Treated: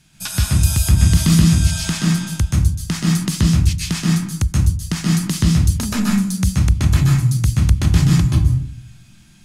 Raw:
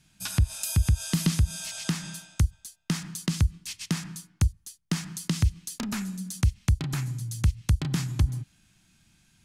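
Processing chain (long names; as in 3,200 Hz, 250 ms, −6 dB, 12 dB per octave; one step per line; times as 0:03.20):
in parallel at +2.5 dB: brickwall limiter −21 dBFS, peak gain reduction 7.5 dB
on the sum: convolution reverb RT60 0.45 s, pre-delay 127 ms, DRR −2.5 dB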